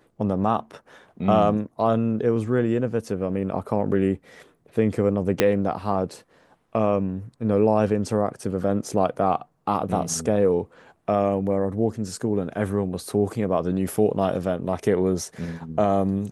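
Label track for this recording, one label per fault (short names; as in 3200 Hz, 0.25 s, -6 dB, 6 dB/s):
5.400000	5.400000	pop -3 dBFS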